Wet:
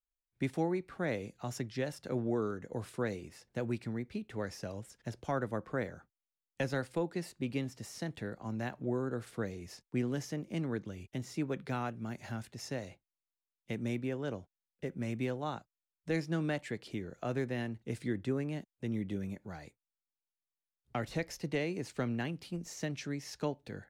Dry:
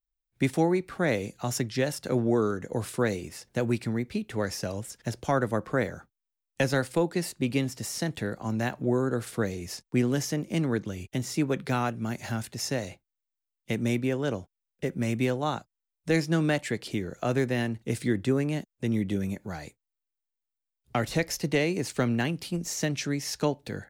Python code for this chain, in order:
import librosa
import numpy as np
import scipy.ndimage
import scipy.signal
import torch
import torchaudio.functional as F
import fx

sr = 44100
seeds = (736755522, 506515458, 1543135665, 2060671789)

y = fx.high_shelf(x, sr, hz=5600.0, db=-8.5)
y = y * librosa.db_to_amplitude(-8.5)